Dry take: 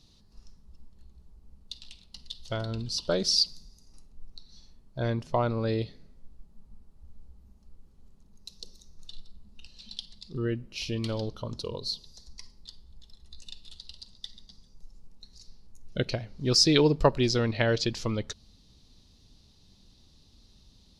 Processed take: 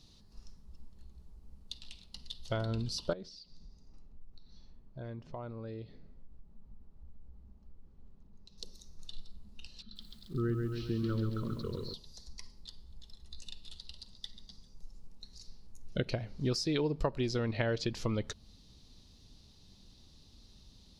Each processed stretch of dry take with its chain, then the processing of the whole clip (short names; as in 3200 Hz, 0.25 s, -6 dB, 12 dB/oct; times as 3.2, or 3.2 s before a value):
3.13–8.58 compressor 2.5:1, threshold -45 dBFS + tape spacing loss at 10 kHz 22 dB
9.82–11.94 EQ curve 380 Hz 0 dB, 550 Hz -12 dB, 810 Hz -26 dB, 1300 Hz +5 dB, 2400 Hz -18 dB, 4000 Hz -9 dB, 9100 Hz -30 dB + lo-fi delay 0.136 s, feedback 55%, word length 10-bit, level -5 dB
whole clip: compressor 6:1, threshold -28 dBFS; dynamic EQ 5400 Hz, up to -6 dB, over -50 dBFS, Q 0.73